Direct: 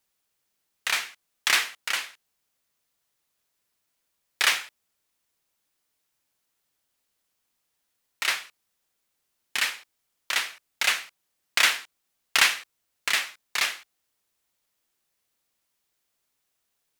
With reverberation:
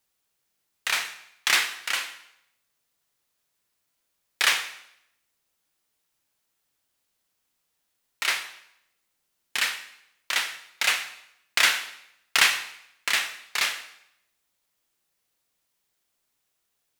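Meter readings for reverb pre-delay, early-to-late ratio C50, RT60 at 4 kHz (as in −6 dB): 6 ms, 11.0 dB, 0.70 s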